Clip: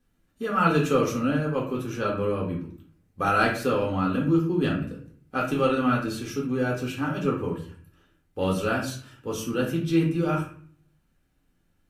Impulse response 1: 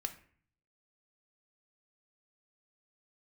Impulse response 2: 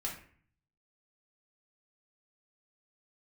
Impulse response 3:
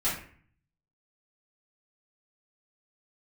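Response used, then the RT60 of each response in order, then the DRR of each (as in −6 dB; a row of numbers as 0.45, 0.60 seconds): 2; 0.50, 0.50, 0.50 seconds; 7.0, −2.5, −10.5 decibels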